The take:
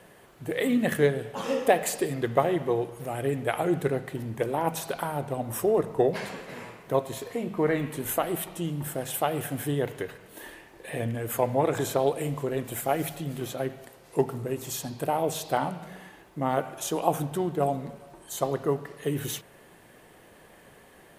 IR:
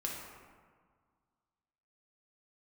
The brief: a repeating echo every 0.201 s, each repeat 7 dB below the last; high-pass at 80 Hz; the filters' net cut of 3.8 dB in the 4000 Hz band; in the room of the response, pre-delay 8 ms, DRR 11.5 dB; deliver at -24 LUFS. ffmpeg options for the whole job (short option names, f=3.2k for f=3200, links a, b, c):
-filter_complex "[0:a]highpass=80,equalizer=f=4k:t=o:g=-5,aecho=1:1:201|402|603|804|1005:0.447|0.201|0.0905|0.0407|0.0183,asplit=2[a][b];[1:a]atrim=start_sample=2205,adelay=8[c];[b][c]afir=irnorm=-1:irlink=0,volume=-13.5dB[d];[a][d]amix=inputs=2:normalize=0,volume=4dB"